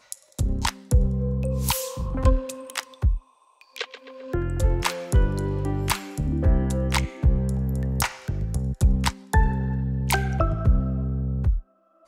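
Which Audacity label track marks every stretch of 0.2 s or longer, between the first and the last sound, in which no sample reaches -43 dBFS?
3.190000	3.610000	silence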